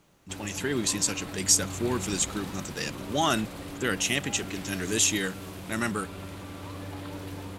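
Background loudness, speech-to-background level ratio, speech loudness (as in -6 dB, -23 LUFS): -39.0 LUFS, 11.0 dB, -28.0 LUFS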